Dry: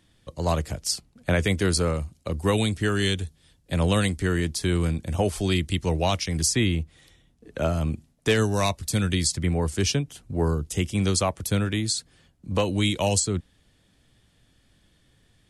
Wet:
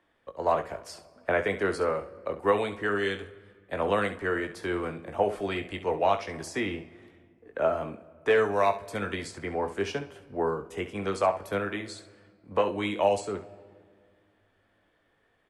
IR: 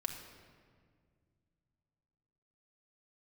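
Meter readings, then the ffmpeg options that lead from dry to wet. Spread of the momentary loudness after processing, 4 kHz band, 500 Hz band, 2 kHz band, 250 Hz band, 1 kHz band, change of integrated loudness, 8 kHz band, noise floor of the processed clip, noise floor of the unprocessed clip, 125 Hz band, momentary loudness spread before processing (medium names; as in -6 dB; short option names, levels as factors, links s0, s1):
12 LU, -12.5 dB, +0.5 dB, -1.0 dB, -8.5 dB, +2.5 dB, -4.0 dB, -19.5 dB, -69 dBFS, -63 dBFS, -16.5 dB, 8 LU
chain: -filter_complex "[0:a]acrossover=split=370 2100:gain=0.0891 1 0.0631[s0][s1][s2];[s0][s1][s2]amix=inputs=3:normalize=0,aecho=1:1:20|68:0.398|0.251,asplit=2[s3][s4];[1:a]atrim=start_sample=2205,highshelf=f=7500:g=10.5[s5];[s4][s5]afir=irnorm=-1:irlink=0,volume=0.299[s6];[s3][s6]amix=inputs=2:normalize=0"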